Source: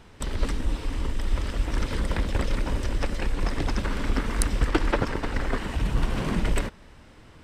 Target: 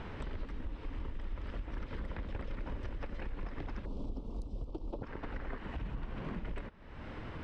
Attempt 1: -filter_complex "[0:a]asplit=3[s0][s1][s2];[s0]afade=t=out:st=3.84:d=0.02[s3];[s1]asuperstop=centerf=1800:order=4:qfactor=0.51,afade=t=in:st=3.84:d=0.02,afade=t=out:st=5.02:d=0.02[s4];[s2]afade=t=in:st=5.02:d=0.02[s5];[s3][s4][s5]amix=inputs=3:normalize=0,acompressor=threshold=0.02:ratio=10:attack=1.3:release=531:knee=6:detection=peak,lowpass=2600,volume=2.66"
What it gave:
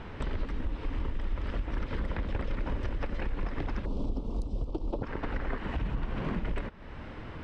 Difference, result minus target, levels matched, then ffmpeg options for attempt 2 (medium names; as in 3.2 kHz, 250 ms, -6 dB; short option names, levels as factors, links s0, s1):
compression: peak gain reduction -7.5 dB
-filter_complex "[0:a]asplit=3[s0][s1][s2];[s0]afade=t=out:st=3.84:d=0.02[s3];[s1]asuperstop=centerf=1800:order=4:qfactor=0.51,afade=t=in:st=3.84:d=0.02,afade=t=out:st=5.02:d=0.02[s4];[s2]afade=t=in:st=5.02:d=0.02[s5];[s3][s4][s5]amix=inputs=3:normalize=0,acompressor=threshold=0.0075:ratio=10:attack=1.3:release=531:knee=6:detection=peak,lowpass=2600,volume=2.66"